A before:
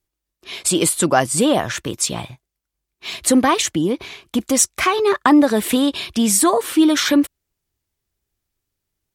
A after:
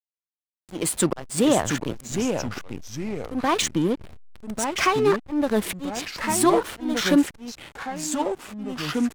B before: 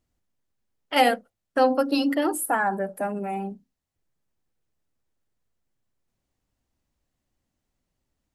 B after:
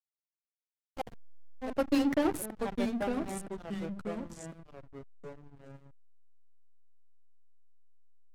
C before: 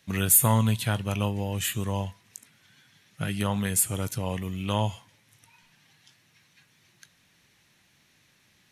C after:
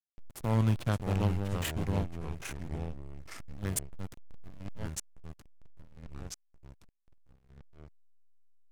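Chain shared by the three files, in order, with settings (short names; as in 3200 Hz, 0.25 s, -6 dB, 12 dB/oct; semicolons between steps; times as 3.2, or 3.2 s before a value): auto swell 0.322 s; backlash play -21 dBFS; echoes that change speed 0.493 s, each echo -3 st, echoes 2, each echo -6 dB; gain -2.5 dB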